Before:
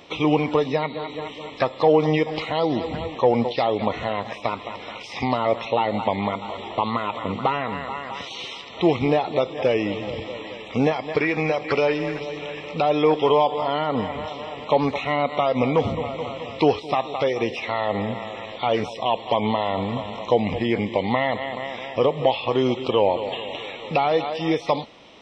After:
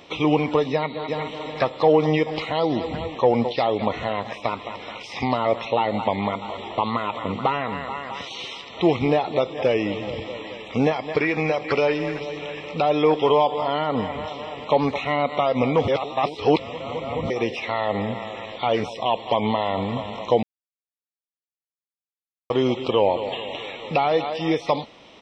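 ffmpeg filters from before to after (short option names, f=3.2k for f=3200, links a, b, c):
-filter_complex "[0:a]asplit=2[a][b];[b]afade=t=in:st=0.71:d=0.01,afade=t=out:st=1.32:d=0.01,aecho=0:1:370|740|1110|1480:0.562341|0.196819|0.0688868|0.0241104[c];[a][c]amix=inputs=2:normalize=0,asplit=5[d][e][f][g][h];[d]atrim=end=15.882[i];[e]atrim=start=15.878:end=17.302,asetpts=PTS-STARTPTS,areverse[j];[f]atrim=start=17.298:end=20.43,asetpts=PTS-STARTPTS,afade=t=out:st=3.128:d=0.004:c=hsin[k];[g]atrim=start=20.43:end=22.5,asetpts=PTS-STARTPTS,volume=0[l];[h]atrim=start=22.5,asetpts=PTS-STARTPTS,afade=t=in:d=0.004:c=hsin[m];[i][j]acrossfade=d=0.004:c1=hsin:c2=hsin[n];[k][l][m]concat=n=3:v=0:a=1[o];[n][o]acrossfade=d=0.004:c1=hsin:c2=hsin"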